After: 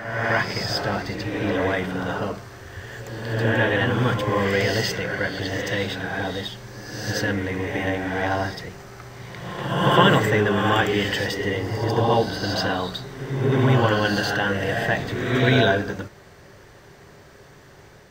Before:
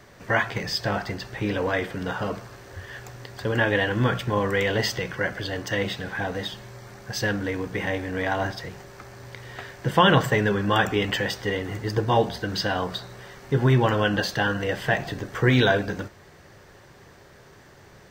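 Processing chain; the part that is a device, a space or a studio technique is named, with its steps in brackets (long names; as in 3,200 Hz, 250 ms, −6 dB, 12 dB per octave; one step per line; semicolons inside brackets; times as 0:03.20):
reverse reverb (reversed playback; convolution reverb RT60 1.3 s, pre-delay 64 ms, DRR 1.5 dB; reversed playback)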